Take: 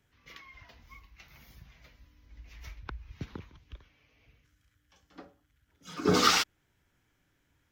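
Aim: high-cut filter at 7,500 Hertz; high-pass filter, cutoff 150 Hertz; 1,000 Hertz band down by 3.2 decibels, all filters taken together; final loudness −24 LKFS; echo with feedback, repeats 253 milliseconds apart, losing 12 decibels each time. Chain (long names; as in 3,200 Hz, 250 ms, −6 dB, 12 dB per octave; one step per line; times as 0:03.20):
high-pass filter 150 Hz
low-pass filter 7,500 Hz
parametric band 1,000 Hz −4.5 dB
repeating echo 253 ms, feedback 25%, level −12 dB
level +3.5 dB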